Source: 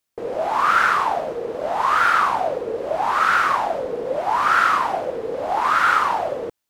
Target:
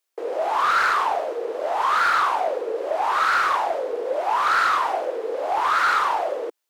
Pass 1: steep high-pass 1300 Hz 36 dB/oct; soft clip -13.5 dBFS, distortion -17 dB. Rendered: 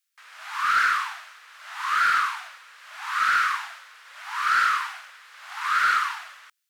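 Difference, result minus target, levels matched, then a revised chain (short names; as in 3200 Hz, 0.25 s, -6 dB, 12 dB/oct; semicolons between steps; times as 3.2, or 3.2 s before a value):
250 Hz band -17.5 dB
steep high-pass 330 Hz 36 dB/oct; soft clip -13.5 dBFS, distortion -16 dB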